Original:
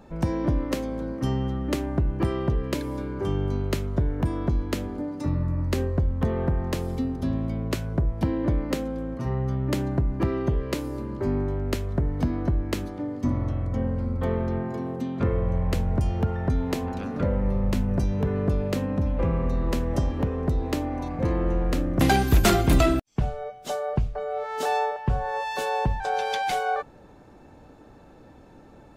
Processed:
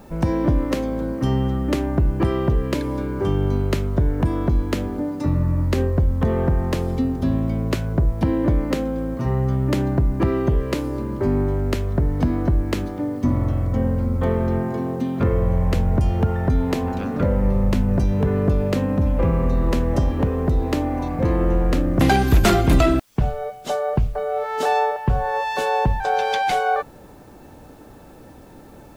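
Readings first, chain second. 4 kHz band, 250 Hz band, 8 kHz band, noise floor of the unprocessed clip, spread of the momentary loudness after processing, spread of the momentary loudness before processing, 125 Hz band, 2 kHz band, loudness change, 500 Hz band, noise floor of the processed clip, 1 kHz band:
+3.0 dB, +5.5 dB, +0.5 dB, -50 dBFS, 5 LU, 5 LU, +5.5 dB, +4.5 dB, +5.0 dB, +5.5 dB, -44 dBFS, +5.5 dB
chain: treble shelf 4.8 kHz -5.5 dB; in parallel at 0 dB: peak limiter -17 dBFS, peak gain reduction 7 dB; on the sum: word length cut 10-bit, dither triangular

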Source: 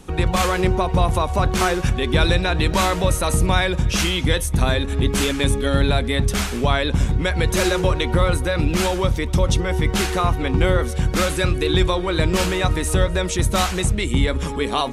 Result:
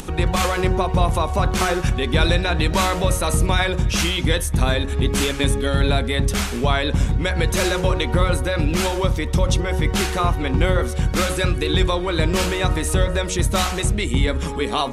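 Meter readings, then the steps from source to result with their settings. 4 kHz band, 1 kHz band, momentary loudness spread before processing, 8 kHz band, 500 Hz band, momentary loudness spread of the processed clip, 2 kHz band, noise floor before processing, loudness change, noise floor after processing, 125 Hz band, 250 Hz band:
0.0 dB, -0.5 dB, 2 LU, 0.0 dB, -1.0 dB, 2 LU, 0.0 dB, -26 dBFS, -0.5 dB, -26 dBFS, -0.5 dB, -0.5 dB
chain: de-hum 91.71 Hz, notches 21; upward compressor, threshold -25 dBFS

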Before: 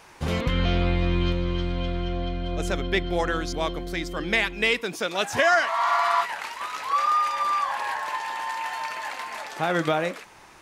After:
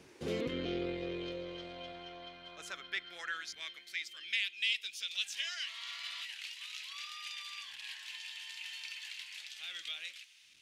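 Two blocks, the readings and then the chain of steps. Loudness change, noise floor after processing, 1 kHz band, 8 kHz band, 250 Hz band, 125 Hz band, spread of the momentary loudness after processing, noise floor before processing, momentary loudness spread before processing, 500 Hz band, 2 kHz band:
-14.0 dB, -58 dBFS, -28.5 dB, -9.0 dB, -15.5 dB, under -20 dB, 11 LU, -49 dBFS, 10 LU, -16.5 dB, -13.0 dB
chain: wind noise 110 Hz -37 dBFS; treble shelf 7.8 kHz -8.5 dB; in parallel at -2 dB: peak limiter -19 dBFS, peak gain reduction 11 dB; on the sum: amplifier tone stack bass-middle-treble 10-0-1; saturation -22.5 dBFS, distortion -20 dB; high-pass sweep 390 Hz -> 3 kHz, 0.71–4.53 s; trim +10 dB

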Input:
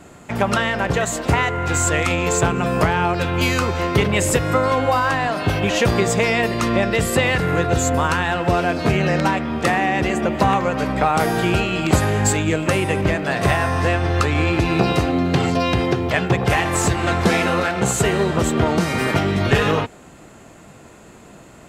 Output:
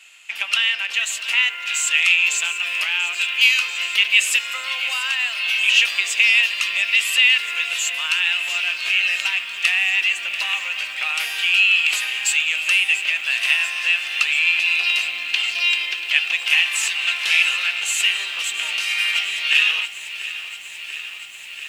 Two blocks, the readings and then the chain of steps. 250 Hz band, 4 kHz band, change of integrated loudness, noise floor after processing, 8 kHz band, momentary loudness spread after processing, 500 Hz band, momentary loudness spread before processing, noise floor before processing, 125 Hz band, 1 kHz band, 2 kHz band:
under -35 dB, +10.0 dB, +1.5 dB, -34 dBFS, +0.5 dB, 8 LU, under -25 dB, 2 LU, -44 dBFS, under -40 dB, -16.0 dB, +6.0 dB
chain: resonant high-pass 2.7 kHz, resonance Q 5.5; bit-crushed delay 688 ms, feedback 80%, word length 7-bit, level -14 dB; trim -1 dB

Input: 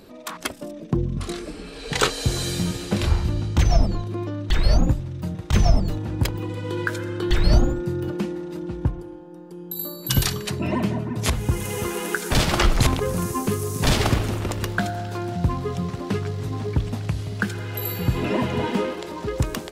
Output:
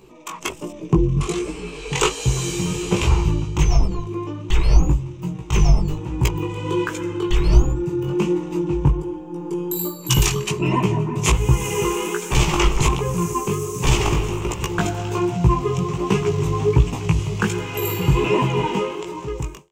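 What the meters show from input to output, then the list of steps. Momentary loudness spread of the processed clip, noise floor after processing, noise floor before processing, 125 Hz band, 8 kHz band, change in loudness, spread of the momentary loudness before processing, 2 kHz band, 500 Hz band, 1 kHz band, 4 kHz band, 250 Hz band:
10 LU, -36 dBFS, -39 dBFS, +3.5 dB, +4.5 dB, +3.0 dB, 10 LU, +1.0 dB, +4.5 dB, +4.5 dB, +1.0 dB, +3.0 dB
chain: fade out at the end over 2.42 s; rippled EQ curve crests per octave 0.72, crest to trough 12 dB; level rider gain up to 16.5 dB; chorus 1.3 Hz, delay 15.5 ms, depth 5.5 ms

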